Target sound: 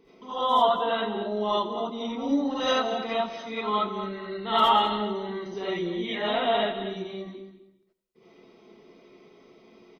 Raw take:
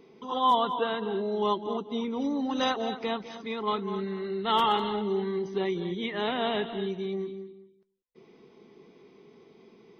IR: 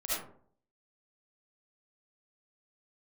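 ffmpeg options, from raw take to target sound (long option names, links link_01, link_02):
-filter_complex "[0:a]aecho=1:1:89|178|267|356:0.178|0.0711|0.0285|0.0114[link_01];[1:a]atrim=start_sample=2205,atrim=end_sample=4410[link_02];[link_01][link_02]afir=irnorm=-1:irlink=0"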